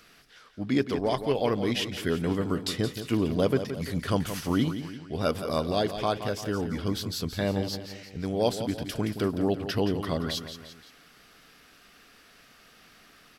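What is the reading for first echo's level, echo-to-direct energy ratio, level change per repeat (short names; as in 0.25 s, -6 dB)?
-10.0 dB, -9.0 dB, -6.5 dB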